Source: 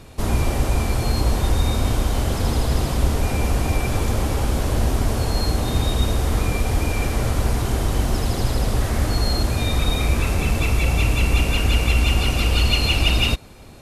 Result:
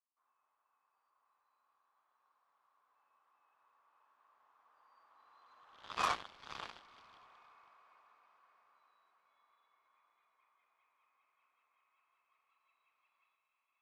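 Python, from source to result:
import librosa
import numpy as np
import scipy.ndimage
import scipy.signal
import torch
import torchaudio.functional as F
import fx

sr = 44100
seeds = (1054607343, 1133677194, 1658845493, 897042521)

y = fx.doppler_pass(x, sr, speed_mps=29, closest_m=1.5, pass_at_s=6.07)
y = fx.ladder_bandpass(y, sr, hz=1200.0, resonance_pct=70)
y = fx.echo_diffused(y, sr, ms=544, feedback_pct=49, wet_db=-5.0)
y = fx.cheby_harmonics(y, sr, harmonics=(5, 7), levels_db=(-30, -14), full_scale_db=-32.0)
y = y * 10.0 ** (10.5 / 20.0)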